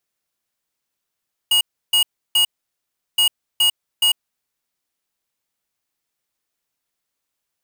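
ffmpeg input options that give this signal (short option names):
-f lavfi -i "aevalsrc='0.178*(2*lt(mod(2880*t,1),0.5)-1)*clip(min(mod(mod(t,1.67),0.42),0.1-mod(mod(t,1.67),0.42))/0.005,0,1)*lt(mod(t,1.67),1.26)':d=3.34:s=44100"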